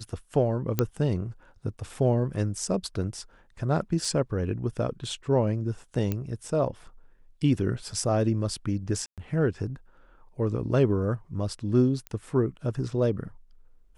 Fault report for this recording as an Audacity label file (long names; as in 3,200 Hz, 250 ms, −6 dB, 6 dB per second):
0.790000	0.790000	click −9 dBFS
4.050000	4.050000	drop-out 2.3 ms
6.120000	6.120000	click −15 dBFS
9.060000	9.180000	drop-out 117 ms
12.070000	12.070000	click −21 dBFS